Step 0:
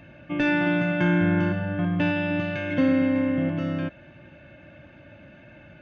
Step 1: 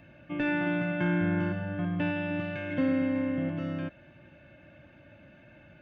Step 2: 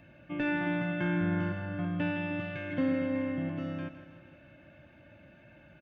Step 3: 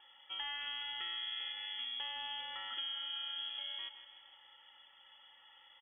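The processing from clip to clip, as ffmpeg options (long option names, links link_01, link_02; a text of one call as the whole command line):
ffmpeg -i in.wav -filter_complex "[0:a]acrossover=split=3800[link_01][link_02];[link_02]acompressor=threshold=-58dB:ratio=4:attack=1:release=60[link_03];[link_01][link_03]amix=inputs=2:normalize=0,volume=-6dB" out.wav
ffmpeg -i in.wav -af "aecho=1:1:161|322|483|644|805|966:0.251|0.138|0.076|0.0418|0.023|0.0126,volume=-2dB" out.wav
ffmpeg -i in.wav -af "crystalizer=i=3:c=0,acompressor=threshold=-32dB:ratio=6,lowpass=frequency=3000:width_type=q:width=0.5098,lowpass=frequency=3000:width_type=q:width=0.6013,lowpass=frequency=3000:width_type=q:width=0.9,lowpass=frequency=3000:width_type=q:width=2.563,afreqshift=-3500,volume=-6.5dB" out.wav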